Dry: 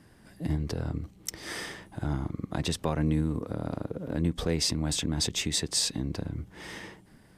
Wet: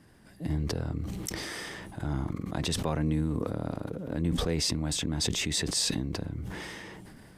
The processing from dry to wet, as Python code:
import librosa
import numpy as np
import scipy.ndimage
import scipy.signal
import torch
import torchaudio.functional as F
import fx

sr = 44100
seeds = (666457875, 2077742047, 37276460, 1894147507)

y = fx.sustainer(x, sr, db_per_s=20.0)
y = y * librosa.db_to_amplitude(-2.0)